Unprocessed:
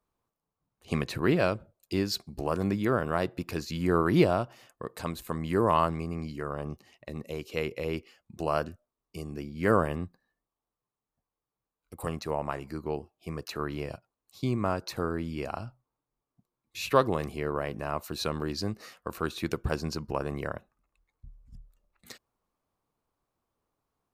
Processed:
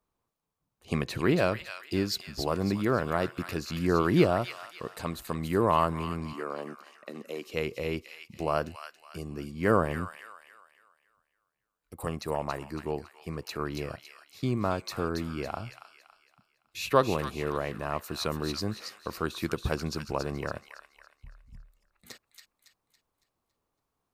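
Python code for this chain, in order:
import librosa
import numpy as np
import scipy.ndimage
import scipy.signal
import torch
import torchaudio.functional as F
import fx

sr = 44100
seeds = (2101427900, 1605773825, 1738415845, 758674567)

y = fx.highpass(x, sr, hz=220.0, slope=24, at=(6.33, 7.47))
y = fx.echo_wet_highpass(y, sr, ms=279, feedback_pct=40, hz=1700.0, wet_db=-5.0)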